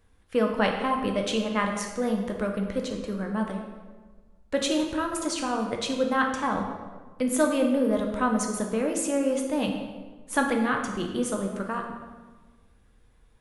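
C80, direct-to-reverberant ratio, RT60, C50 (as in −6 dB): 6.5 dB, 1.5 dB, 1.4 s, 5.0 dB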